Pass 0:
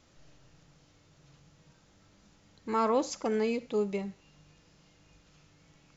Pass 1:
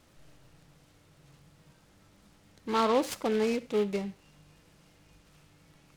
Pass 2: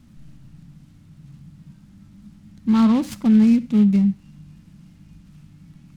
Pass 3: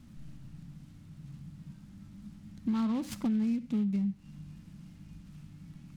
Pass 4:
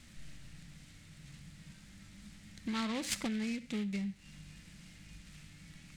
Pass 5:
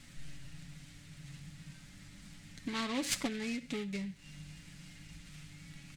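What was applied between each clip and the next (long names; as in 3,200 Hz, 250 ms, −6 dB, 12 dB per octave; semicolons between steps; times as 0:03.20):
short delay modulated by noise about 2,300 Hz, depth 0.039 ms; level +1.5 dB
low shelf with overshoot 310 Hz +12.5 dB, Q 3
downward compressor 4 to 1, threshold −27 dBFS, peak gain reduction 13.5 dB; level −3 dB
graphic EQ with 10 bands 125 Hz −7 dB, 250 Hz −7 dB, 500 Hz +4 dB, 1,000 Hz −4 dB, 2,000 Hz +11 dB, 4,000 Hz +6 dB, 8,000 Hz +10 dB
comb filter 7.1 ms, depth 54%; level +1 dB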